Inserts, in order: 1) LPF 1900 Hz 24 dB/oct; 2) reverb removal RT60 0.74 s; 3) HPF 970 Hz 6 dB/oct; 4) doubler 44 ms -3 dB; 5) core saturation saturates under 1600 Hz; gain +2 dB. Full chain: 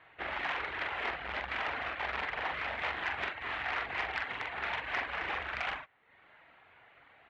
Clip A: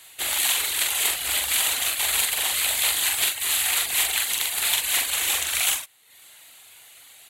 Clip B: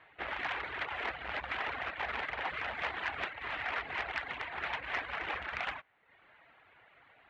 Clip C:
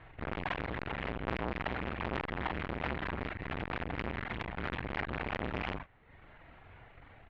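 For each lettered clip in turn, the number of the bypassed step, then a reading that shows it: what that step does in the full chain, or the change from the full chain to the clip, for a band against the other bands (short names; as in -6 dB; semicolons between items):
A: 1, 4 kHz band +18.5 dB; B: 4, loudness change -1.5 LU; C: 3, 125 Hz band +16.0 dB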